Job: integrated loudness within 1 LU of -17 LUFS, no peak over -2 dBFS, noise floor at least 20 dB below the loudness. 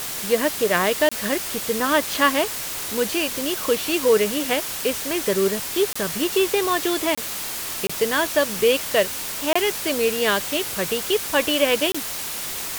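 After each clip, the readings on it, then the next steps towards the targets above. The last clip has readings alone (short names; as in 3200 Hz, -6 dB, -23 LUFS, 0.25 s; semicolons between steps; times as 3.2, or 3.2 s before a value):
dropouts 6; longest dropout 25 ms; noise floor -30 dBFS; noise floor target -42 dBFS; loudness -21.5 LUFS; peak -4.0 dBFS; loudness target -17.0 LUFS
-> interpolate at 1.09/5.93/7.15/7.87/9.53/11.92, 25 ms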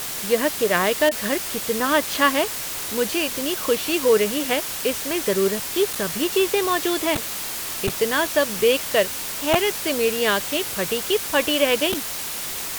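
dropouts 0; noise floor -30 dBFS; noise floor target -42 dBFS
-> denoiser 12 dB, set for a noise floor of -30 dBFS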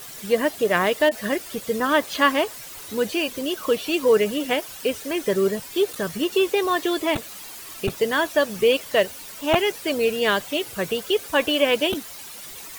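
noise floor -39 dBFS; noise floor target -43 dBFS
-> denoiser 6 dB, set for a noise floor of -39 dBFS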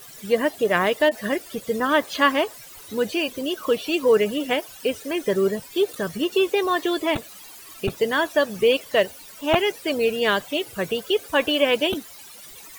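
noise floor -43 dBFS; loudness -22.5 LUFS; peak -4.0 dBFS; loudness target -17.0 LUFS
-> gain +5.5 dB; limiter -2 dBFS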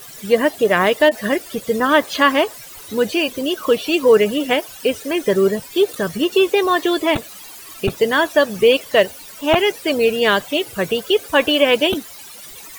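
loudness -17.5 LUFS; peak -2.0 dBFS; noise floor -38 dBFS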